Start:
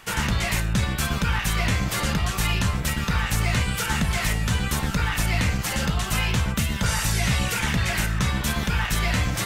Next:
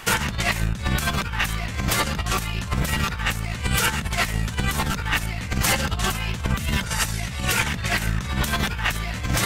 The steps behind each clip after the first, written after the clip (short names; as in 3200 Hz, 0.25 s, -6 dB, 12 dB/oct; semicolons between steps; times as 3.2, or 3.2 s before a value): negative-ratio compressor -27 dBFS, ratio -0.5; gain +4 dB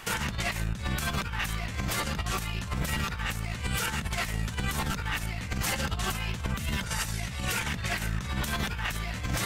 limiter -14 dBFS, peak gain reduction 7.5 dB; gain -5.5 dB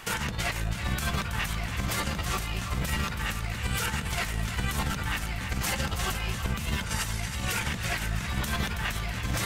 split-band echo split 790 Hz, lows 0.211 s, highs 0.325 s, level -8.5 dB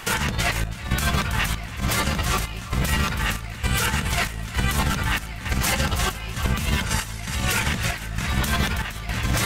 chopper 1.1 Hz, depth 60%, duty 70%; gain +7 dB